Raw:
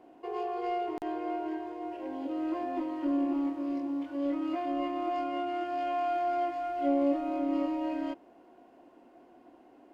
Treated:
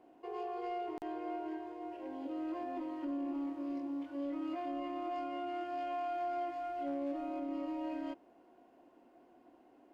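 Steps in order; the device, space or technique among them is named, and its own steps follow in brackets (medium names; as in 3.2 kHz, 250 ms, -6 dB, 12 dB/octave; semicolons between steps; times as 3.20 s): clipper into limiter (hard clipper -20.5 dBFS, distortion -33 dB; peak limiter -25.5 dBFS, peak gain reduction 5 dB); trim -6 dB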